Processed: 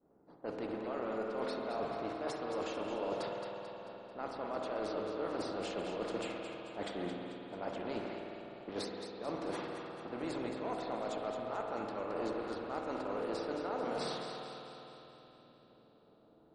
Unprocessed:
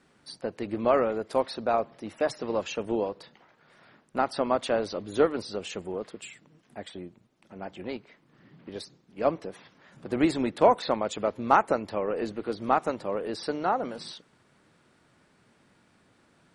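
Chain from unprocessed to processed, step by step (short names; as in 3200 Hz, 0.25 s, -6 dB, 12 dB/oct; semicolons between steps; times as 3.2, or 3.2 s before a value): per-bin compression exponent 0.6; expander -31 dBFS; reverse; compressor 20:1, threshold -31 dBFS, peak gain reduction 20.5 dB; reverse; low-pass opened by the level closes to 550 Hz, open at -30.5 dBFS; on a send: split-band echo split 630 Hz, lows 84 ms, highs 0.22 s, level -8 dB; on the sum: spring tank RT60 3.6 s, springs 50 ms, chirp 20 ms, DRR 1 dB; gain -5.5 dB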